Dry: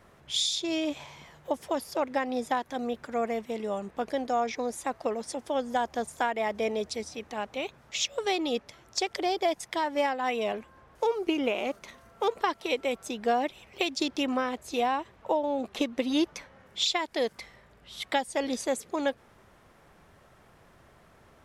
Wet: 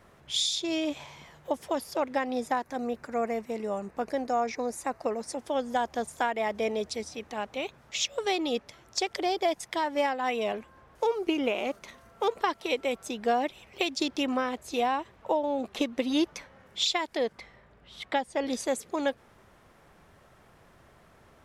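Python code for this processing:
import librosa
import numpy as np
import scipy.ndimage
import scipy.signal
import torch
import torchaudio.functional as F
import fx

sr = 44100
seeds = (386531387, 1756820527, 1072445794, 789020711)

y = fx.peak_eq(x, sr, hz=3300.0, db=-11.0, octaves=0.3, at=(2.47, 5.38))
y = fx.lowpass(y, sr, hz=2600.0, slope=6, at=(17.17, 18.47))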